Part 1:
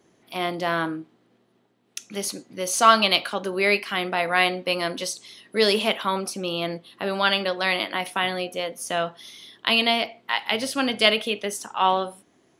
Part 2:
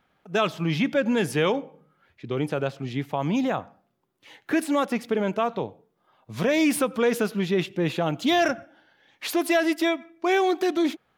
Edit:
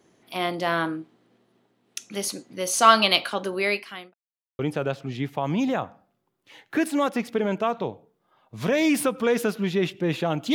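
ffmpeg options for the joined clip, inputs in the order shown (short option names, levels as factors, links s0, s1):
-filter_complex "[0:a]apad=whole_dur=10.54,atrim=end=10.54,asplit=2[s0][s1];[s0]atrim=end=4.14,asetpts=PTS-STARTPTS,afade=t=out:st=3.43:d=0.71[s2];[s1]atrim=start=4.14:end=4.59,asetpts=PTS-STARTPTS,volume=0[s3];[1:a]atrim=start=2.35:end=8.3,asetpts=PTS-STARTPTS,afade=t=in:d=0.004:c=hsin[s4];[s2][s3][s4]concat=n=3:v=0:a=1"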